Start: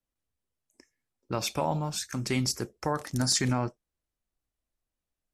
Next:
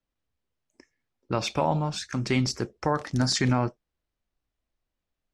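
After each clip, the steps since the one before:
low-pass filter 4,700 Hz 12 dB per octave
level +4 dB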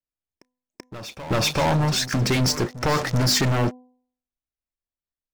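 leveller curve on the samples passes 5
hum removal 250.9 Hz, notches 4
backwards echo 384 ms −15 dB
level −5 dB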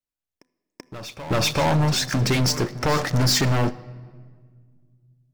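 rectangular room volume 2,700 cubic metres, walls mixed, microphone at 0.32 metres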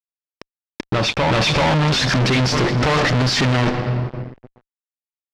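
fuzz pedal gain 38 dB, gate −46 dBFS
Chebyshev low-pass filter 3,700 Hz, order 2
level −1 dB

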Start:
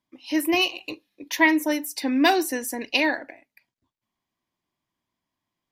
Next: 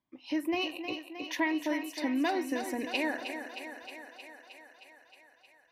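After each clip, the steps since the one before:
low-pass filter 2,200 Hz 6 dB per octave
downward compressor 2.5 to 1, threshold −28 dBFS, peak gain reduction 9 dB
feedback echo with a high-pass in the loop 312 ms, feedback 72%, high-pass 250 Hz, level −8 dB
level −2.5 dB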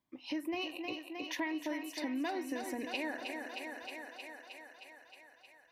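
downward compressor 2 to 1, threshold −41 dBFS, peak gain reduction 9 dB
level +1 dB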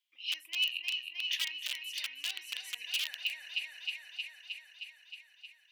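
wrap-around overflow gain 29 dB
high-pass with resonance 2,900 Hz, resonance Q 4.9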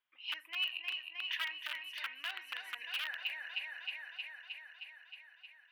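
drawn EQ curve 320 Hz 0 dB, 1,500 Hz +11 dB, 2,200 Hz −2 dB, 7,000 Hz −21 dB, 11,000 Hz −12 dB
level +1.5 dB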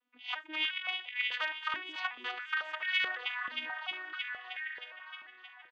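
vocoder with an arpeggio as carrier major triad, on B3, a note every 351 ms
slap from a distant wall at 240 metres, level −9 dB
high-pass on a step sequencer 4.6 Hz 270–1,900 Hz
level +3 dB

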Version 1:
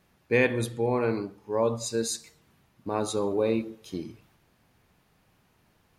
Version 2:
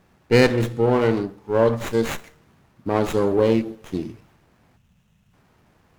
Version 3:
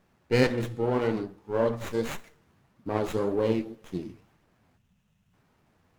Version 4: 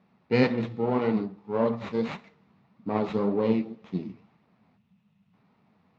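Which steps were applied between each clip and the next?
time-frequency box erased 0:04.77–0:05.33, 240–2,500 Hz; windowed peak hold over 9 samples; level +7.5 dB
flanger 1.8 Hz, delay 3.2 ms, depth 9.4 ms, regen +56%; level −3.5 dB
loudspeaker in its box 140–4,100 Hz, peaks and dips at 200 Hz +8 dB, 340 Hz −6 dB, 550 Hz −4 dB, 1,600 Hz −8 dB, 3,100 Hz −6 dB; level +2.5 dB

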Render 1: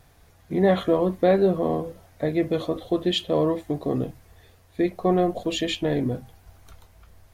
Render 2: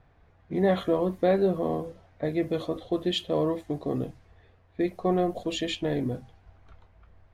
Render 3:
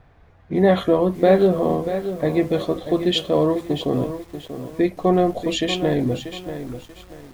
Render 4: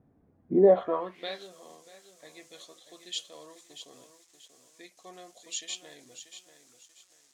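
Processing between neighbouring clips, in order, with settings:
low-pass that shuts in the quiet parts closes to 2,100 Hz, open at −21 dBFS; level −4 dB
feedback echo at a low word length 637 ms, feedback 35%, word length 8 bits, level −10 dB; level +7.5 dB
band-pass filter sweep 250 Hz → 6,900 Hz, 0:00.50–0:01.46

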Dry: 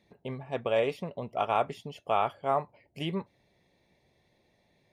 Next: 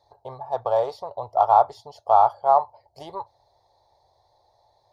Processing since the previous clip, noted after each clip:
in parallel at −11 dB: soft clipping −29 dBFS, distortion −7 dB
on the sum: drawn EQ curve 110 Hz 0 dB, 190 Hz −26 dB, 860 Hz +14 dB, 2,600 Hz −23 dB, 4,300 Hz +7 dB, 8,000 Hz −5 dB
level +1 dB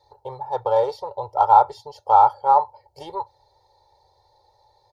comb filter 2.2 ms, depth 96%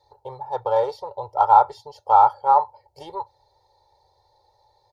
dynamic equaliser 1,500 Hz, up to +4 dB, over −27 dBFS, Q 1
level −2 dB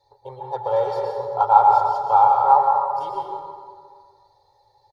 comb filter 7.3 ms, depth 39%
dense smooth reverb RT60 1.9 s, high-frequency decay 0.55×, pre-delay 100 ms, DRR 0 dB
level −2.5 dB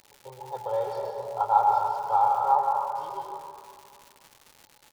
echo with shifted repeats 265 ms, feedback 44%, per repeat +70 Hz, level −18 dB
surface crackle 280 per second −31 dBFS
level −7.5 dB

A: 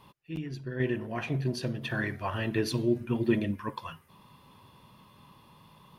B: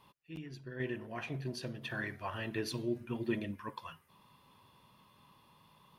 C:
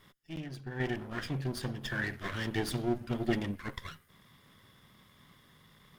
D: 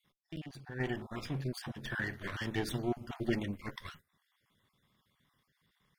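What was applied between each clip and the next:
low-shelf EQ 440 Hz −5 dB; level −5.5 dB
lower of the sound and its delayed copy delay 0.58 ms; level +5 dB
time-frequency cells dropped at random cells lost 26%; noise gate −53 dBFS, range −11 dB; level −2 dB

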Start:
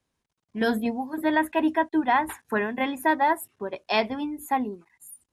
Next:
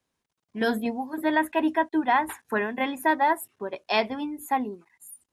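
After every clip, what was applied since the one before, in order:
low-shelf EQ 130 Hz −7.5 dB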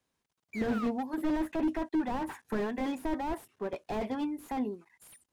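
sound drawn into the spectrogram fall, 0:00.53–0:00.87, 1,100–2,400 Hz −33 dBFS
slew-rate limiting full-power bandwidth 21 Hz
level −1.5 dB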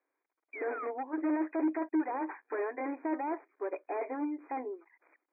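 linear-phase brick-wall band-pass 270–2,500 Hz

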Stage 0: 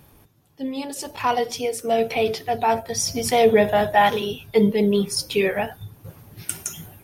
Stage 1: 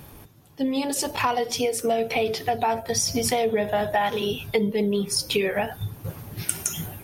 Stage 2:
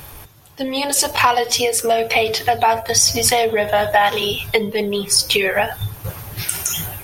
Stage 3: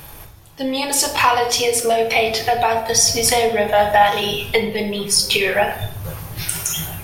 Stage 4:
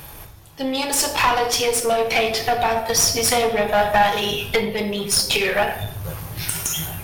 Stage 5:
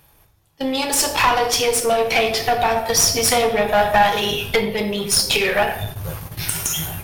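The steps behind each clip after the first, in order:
downward compressor 6 to 1, threshold −28 dBFS, peak gain reduction 16 dB; level +7 dB
parametric band 230 Hz −12.5 dB 2 octaves; boost into a limiter +12 dB; level −1 dB
rectangular room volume 220 cubic metres, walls mixed, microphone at 0.65 metres; level −1.5 dB
one-sided soft clipper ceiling −18 dBFS
noise gate −31 dBFS, range −17 dB; level +1.5 dB

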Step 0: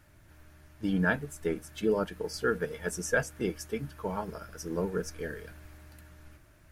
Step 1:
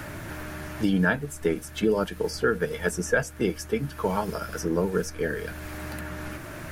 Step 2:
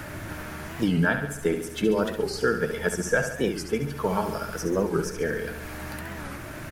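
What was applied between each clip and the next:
multiband upward and downward compressor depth 70%; level +6 dB
repeating echo 70 ms, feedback 58%, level −8.5 dB; wow of a warped record 45 rpm, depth 160 cents

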